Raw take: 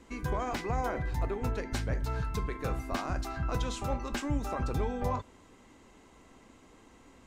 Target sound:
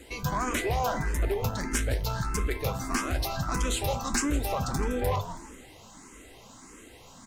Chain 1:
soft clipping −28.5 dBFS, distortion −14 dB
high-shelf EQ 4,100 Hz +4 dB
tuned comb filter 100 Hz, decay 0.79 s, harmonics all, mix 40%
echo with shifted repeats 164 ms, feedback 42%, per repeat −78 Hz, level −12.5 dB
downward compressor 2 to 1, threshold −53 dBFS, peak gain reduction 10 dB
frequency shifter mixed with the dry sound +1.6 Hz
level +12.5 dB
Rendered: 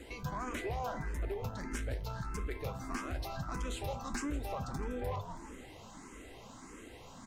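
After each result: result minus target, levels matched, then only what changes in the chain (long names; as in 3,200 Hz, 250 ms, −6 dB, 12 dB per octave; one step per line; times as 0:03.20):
downward compressor: peak gain reduction +10 dB; 8,000 Hz band −5.0 dB
remove: downward compressor 2 to 1, threshold −53 dBFS, peak gain reduction 10 dB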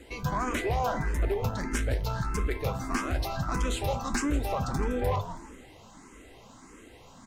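8,000 Hz band −5.5 dB
change: high-shelf EQ 4,100 Hz +12.5 dB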